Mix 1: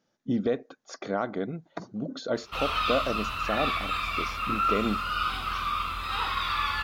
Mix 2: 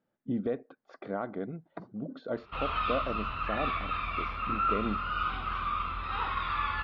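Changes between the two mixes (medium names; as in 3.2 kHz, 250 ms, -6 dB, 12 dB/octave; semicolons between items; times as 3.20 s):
speech -4.0 dB; master: add distance through air 440 m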